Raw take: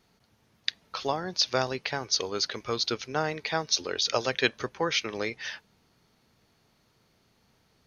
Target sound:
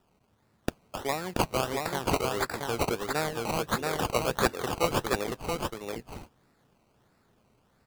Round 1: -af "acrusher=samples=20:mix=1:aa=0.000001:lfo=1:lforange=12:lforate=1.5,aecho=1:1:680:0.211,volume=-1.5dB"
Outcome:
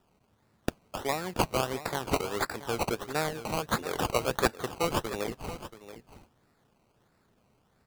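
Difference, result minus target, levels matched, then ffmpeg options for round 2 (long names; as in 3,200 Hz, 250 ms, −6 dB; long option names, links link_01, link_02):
echo-to-direct −10.5 dB
-af "acrusher=samples=20:mix=1:aa=0.000001:lfo=1:lforange=12:lforate=1.5,aecho=1:1:680:0.708,volume=-1.5dB"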